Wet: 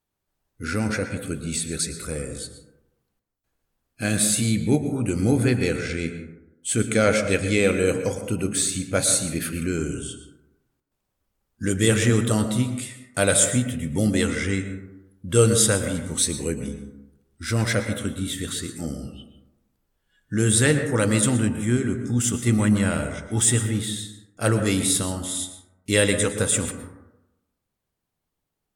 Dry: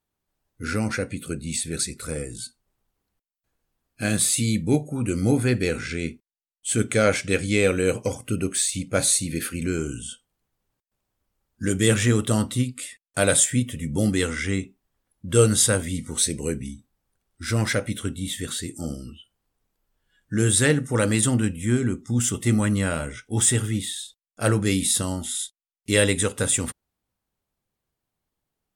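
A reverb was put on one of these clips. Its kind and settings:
dense smooth reverb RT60 0.95 s, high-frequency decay 0.3×, pre-delay 100 ms, DRR 8 dB

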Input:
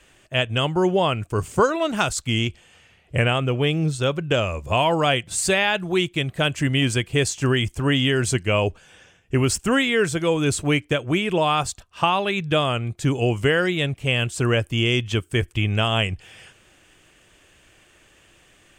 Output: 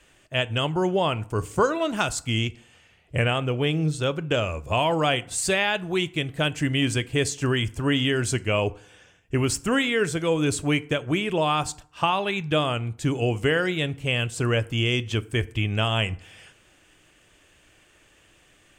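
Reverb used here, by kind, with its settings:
feedback delay network reverb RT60 0.57 s, low-frequency decay 1×, high-frequency decay 0.6×, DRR 15 dB
level −3 dB

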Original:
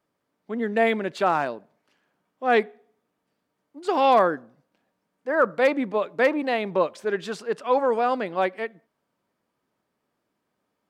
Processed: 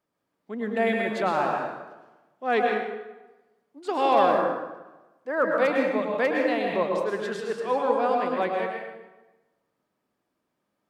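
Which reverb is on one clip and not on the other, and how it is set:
dense smooth reverb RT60 1.1 s, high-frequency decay 0.75×, pre-delay 95 ms, DRR 0 dB
level −4.5 dB

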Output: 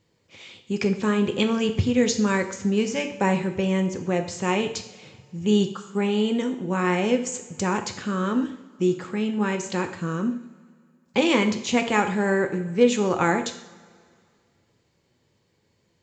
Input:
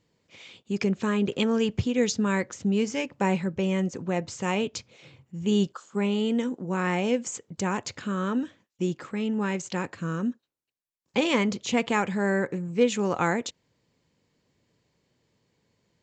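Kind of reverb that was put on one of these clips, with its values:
coupled-rooms reverb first 0.62 s, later 2.3 s, DRR 6 dB
level +2.5 dB

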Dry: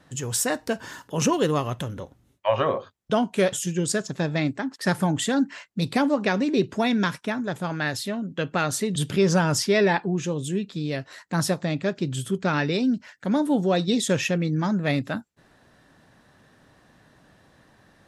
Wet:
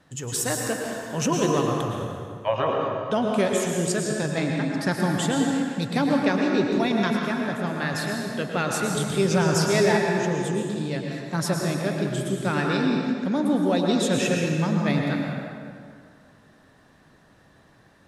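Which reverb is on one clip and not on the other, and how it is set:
dense smooth reverb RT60 2.2 s, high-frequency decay 0.65×, pre-delay 95 ms, DRR 0 dB
level −2.5 dB

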